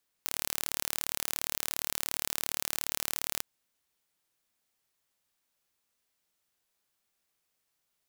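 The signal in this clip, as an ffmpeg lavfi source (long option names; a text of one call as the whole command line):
ffmpeg -f lavfi -i "aevalsrc='0.596*eq(mod(n,1185),0)':duration=3.15:sample_rate=44100" out.wav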